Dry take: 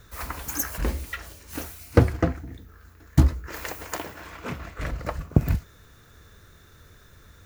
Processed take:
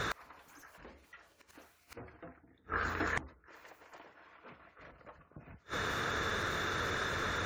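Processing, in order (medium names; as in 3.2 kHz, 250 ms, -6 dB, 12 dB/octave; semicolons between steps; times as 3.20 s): overdrive pedal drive 32 dB, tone 1.7 kHz, clips at -1 dBFS; inverted gate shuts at -21 dBFS, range -38 dB; spectral gate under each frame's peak -30 dB strong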